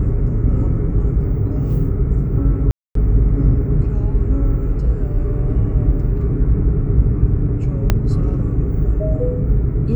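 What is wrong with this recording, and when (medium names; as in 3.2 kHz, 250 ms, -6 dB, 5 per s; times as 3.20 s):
2.71–2.95 s: dropout 243 ms
7.90 s: pop -2 dBFS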